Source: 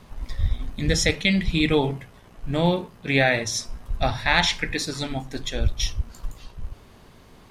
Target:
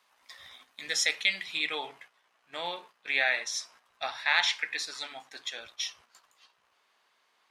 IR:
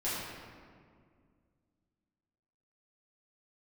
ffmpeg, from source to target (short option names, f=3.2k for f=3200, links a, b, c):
-af "highpass=1.1k,agate=range=-8dB:threshold=-49dB:ratio=16:detection=peak,asetnsamples=n=441:p=0,asendcmd='1.57 highshelf g -12',highshelf=f=8.6k:g=-2,volume=-3dB"